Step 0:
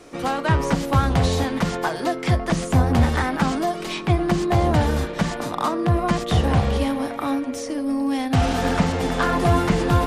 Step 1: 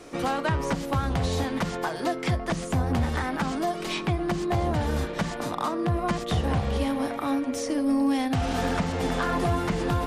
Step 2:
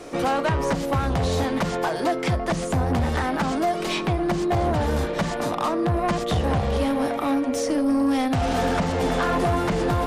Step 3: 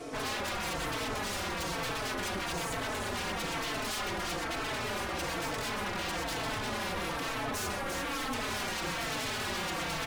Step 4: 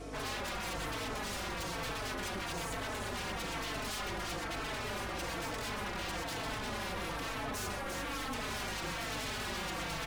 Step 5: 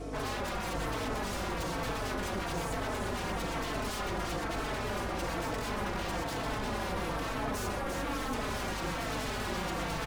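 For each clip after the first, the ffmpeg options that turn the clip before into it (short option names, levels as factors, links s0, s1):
-af "alimiter=limit=0.158:level=0:latency=1:release=466"
-af "equalizer=f=590:t=o:w=1.2:g=4,asoftclip=type=tanh:threshold=0.0944,volume=1.68"
-filter_complex "[0:a]aecho=1:1:126|348|759:0.211|0.531|0.133,aeval=exprs='0.0447*(abs(mod(val(0)/0.0447+3,4)-2)-1)':c=same,asplit=2[s0][s1];[s1]adelay=4,afreqshift=-1.1[s2];[s0][s2]amix=inputs=2:normalize=1"
-af "aeval=exprs='val(0)+0.00631*(sin(2*PI*50*n/s)+sin(2*PI*2*50*n/s)/2+sin(2*PI*3*50*n/s)/3+sin(2*PI*4*50*n/s)/4+sin(2*PI*5*50*n/s)/5)':c=same,volume=0.631"
-filter_complex "[0:a]asplit=2[s0][s1];[s1]adynamicsmooth=sensitivity=3.5:basefreq=1100,volume=0.891[s2];[s0][s2]amix=inputs=2:normalize=0,aecho=1:1:676:0.299"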